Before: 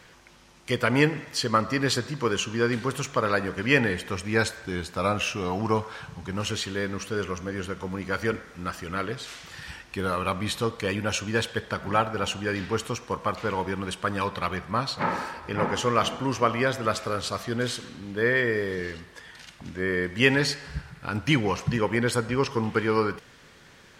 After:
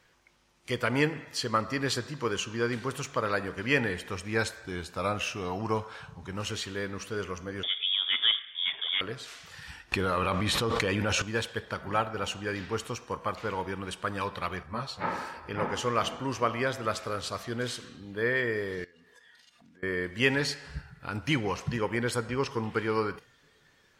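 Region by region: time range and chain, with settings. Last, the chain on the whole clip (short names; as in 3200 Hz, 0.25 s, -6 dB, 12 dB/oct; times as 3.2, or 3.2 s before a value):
7.63–9.01 low shelf 390 Hz +11 dB + inverted band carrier 3500 Hz
9.92–11.22 high shelf 7500 Hz -8 dB + fast leveller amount 100%
14.63–15.04 bell 61 Hz +8.5 dB 1.2 oct + ensemble effect
18.84–19.83 HPF 160 Hz 6 dB/oct + compressor 20:1, threshold -47 dBFS + comb 4.2 ms, depth 32%
whole clip: spectral noise reduction 8 dB; bell 190 Hz -2.5 dB 0.94 oct; gain -4.5 dB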